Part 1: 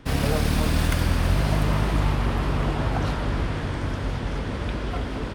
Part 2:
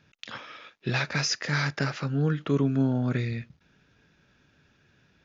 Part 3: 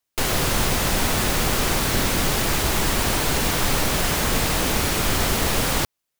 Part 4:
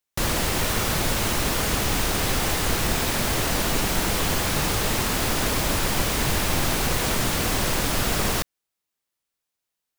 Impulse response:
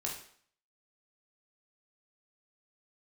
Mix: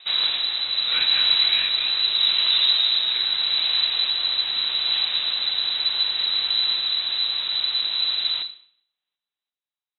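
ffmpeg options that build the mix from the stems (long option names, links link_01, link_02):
-filter_complex "[0:a]tremolo=f=0.79:d=0.93,volume=1dB[link_01];[1:a]volume=-4dB,asplit=2[link_02][link_03];[link_03]volume=-5.5dB[link_04];[2:a]adelay=950,volume=-14.5dB,asplit=2[link_05][link_06];[link_06]volume=-18dB[link_07];[3:a]lowshelf=frequency=370:gain=12,volume=-13.5dB,asplit=2[link_08][link_09];[link_09]volume=-4dB[link_10];[4:a]atrim=start_sample=2205[link_11];[link_04][link_10]amix=inputs=2:normalize=0[link_12];[link_12][link_11]afir=irnorm=-1:irlink=0[link_13];[link_07]aecho=0:1:337|674|1011|1348|1685|2022|2359|2696:1|0.53|0.281|0.149|0.0789|0.0418|0.0222|0.0117[link_14];[link_01][link_02][link_05][link_08][link_13][link_14]amix=inputs=6:normalize=0,lowpass=frequency=3400:width_type=q:width=0.5098,lowpass=frequency=3400:width_type=q:width=0.6013,lowpass=frequency=3400:width_type=q:width=0.9,lowpass=frequency=3400:width_type=q:width=2.563,afreqshift=-4000"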